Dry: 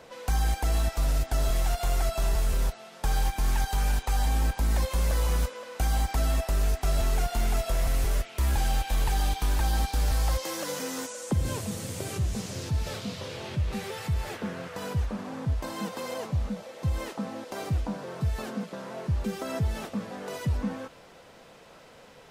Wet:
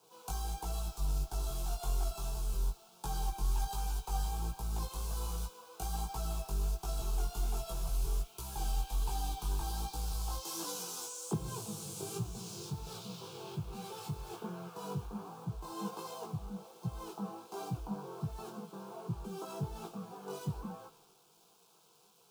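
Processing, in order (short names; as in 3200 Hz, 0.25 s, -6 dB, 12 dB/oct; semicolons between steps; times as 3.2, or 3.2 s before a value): in parallel at +0.5 dB: compressor, threshold -34 dBFS, peak gain reduction 12 dB; on the sum: chorus 1.3 Hz, delay 16.5 ms, depth 4.4 ms; requantised 8-bit, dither none; fixed phaser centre 380 Hz, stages 8; three-band expander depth 70%; gain -6 dB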